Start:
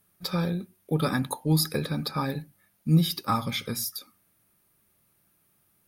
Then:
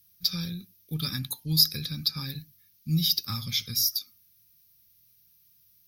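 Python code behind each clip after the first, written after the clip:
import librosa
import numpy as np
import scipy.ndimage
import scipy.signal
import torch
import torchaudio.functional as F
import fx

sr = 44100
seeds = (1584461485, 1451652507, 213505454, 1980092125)

y = fx.curve_eq(x, sr, hz=(110.0, 690.0, 5700.0, 8500.0, 13000.0), db=(0, -25, 12, -10, 9))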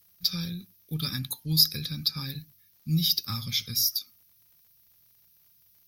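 y = fx.dmg_crackle(x, sr, seeds[0], per_s=79.0, level_db=-53.0)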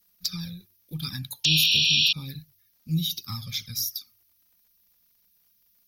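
y = fx.spec_paint(x, sr, seeds[1], shape='noise', start_s=1.44, length_s=0.69, low_hz=2400.0, high_hz=5700.0, level_db=-18.0)
y = fx.env_flanger(y, sr, rest_ms=4.3, full_db=-21.5)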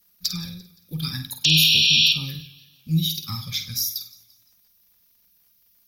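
y = fx.room_flutter(x, sr, wall_m=8.6, rt60_s=0.35)
y = fx.echo_warbled(y, sr, ms=172, feedback_pct=45, rate_hz=2.8, cents=82, wet_db=-21.5)
y = y * librosa.db_to_amplitude(3.5)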